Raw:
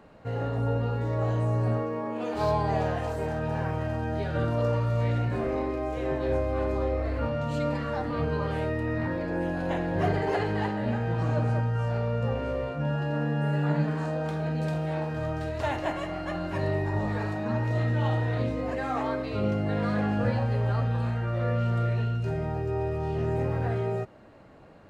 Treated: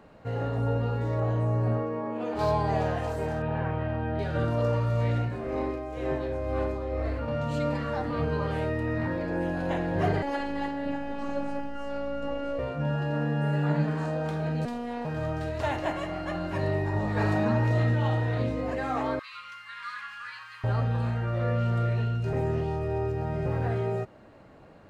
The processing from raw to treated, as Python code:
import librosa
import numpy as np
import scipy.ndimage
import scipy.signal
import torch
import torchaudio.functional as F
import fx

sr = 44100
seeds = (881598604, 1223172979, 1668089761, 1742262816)

y = fx.high_shelf(x, sr, hz=3400.0, db=-9.0, at=(1.2, 2.39))
y = fx.lowpass(y, sr, hz=3500.0, slope=24, at=(3.42, 4.19))
y = fx.tremolo(y, sr, hz=2.1, depth=0.5, at=(5.16, 7.28))
y = fx.robotise(y, sr, hz=281.0, at=(10.22, 12.59))
y = fx.robotise(y, sr, hz=240.0, at=(14.65, 15.05))
y = fx.env_flatten(y, sr, amount_pct=70, at=(17.16, 17.94), fade=0.02)
y = fx.ellip_highpass(y, sr, hz=1100.0, order=4, stop_db=40, at=(19.19, 20.64))
y = fx.edit(y, sr, fx.reverse_span(start_s=22.33, length_s=1.13), tone=tone)